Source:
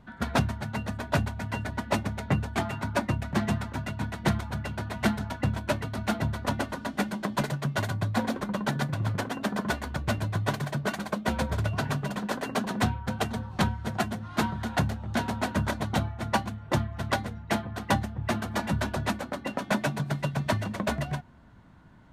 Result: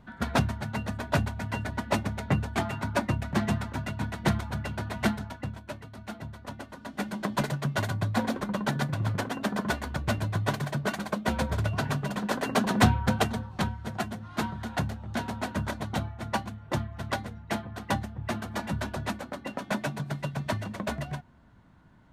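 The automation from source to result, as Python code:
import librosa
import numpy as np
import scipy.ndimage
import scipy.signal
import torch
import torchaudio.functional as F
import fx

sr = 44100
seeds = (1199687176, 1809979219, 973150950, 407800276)

y = fx.gain(x, sr, db=fx.line((5.02, 0.0), (5.64, -11.5), (6.66, -11.5), (7.22, 0.0), (12.07, 0.0), (13.05, 7.0), (13.54, -3.5)))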